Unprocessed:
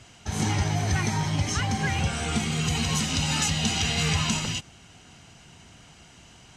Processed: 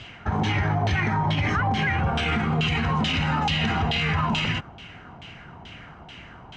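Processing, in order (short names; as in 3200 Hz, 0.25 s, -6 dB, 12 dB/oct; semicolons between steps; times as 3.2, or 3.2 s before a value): LFO low-pass saw down 2.3 Hz 820–3400 Hz; limiter -22.5 dBFS, peak gain reduction 10.5 dB; gain +7 dB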